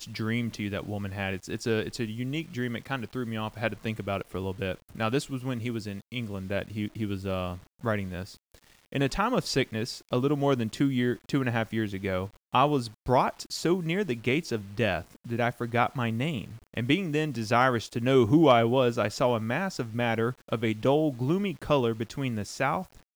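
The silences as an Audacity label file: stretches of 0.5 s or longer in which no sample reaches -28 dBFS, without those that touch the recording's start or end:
8.220000	8.950000	silence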